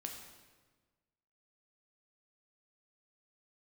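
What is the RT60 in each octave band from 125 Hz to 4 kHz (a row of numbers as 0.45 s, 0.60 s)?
1.7 s, 1.6 s, 1.5 s, 1.3 s, 1.2 s, 1.1 s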